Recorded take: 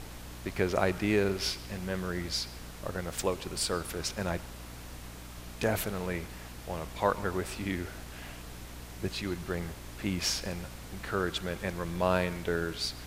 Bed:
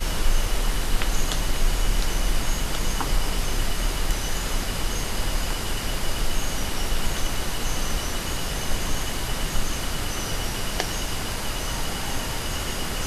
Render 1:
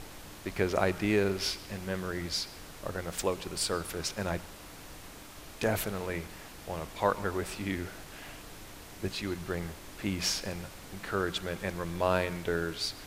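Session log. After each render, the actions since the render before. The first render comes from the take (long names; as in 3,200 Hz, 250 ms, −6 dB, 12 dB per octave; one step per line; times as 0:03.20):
mains-hum notches 60/120/180/240 Hz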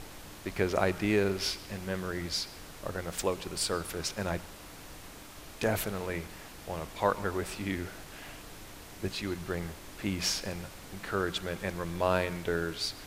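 no processing that can be heard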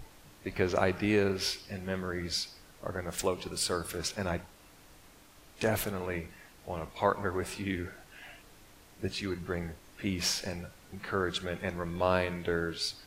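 noise reduction from a noise print 9 dB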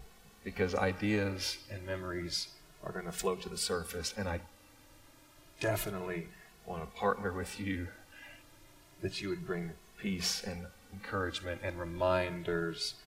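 barber-pole flanger 2.3 ms +0.3 Hz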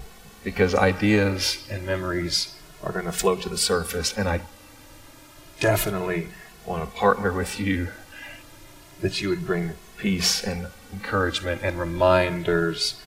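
level +12 dB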